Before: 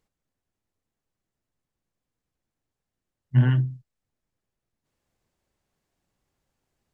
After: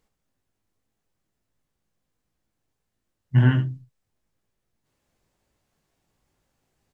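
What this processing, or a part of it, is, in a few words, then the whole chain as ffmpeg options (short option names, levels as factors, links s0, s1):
slapback doubling: -filter_complex "[0:a]asplit=3[s0][s1][s2];[s1]adelay=19,volume=0.531[s3];[s2]adelay=76,volume=0.282[s4];[s0][s3][s4]amix=inputs=3:normalize=0,volume=1.5"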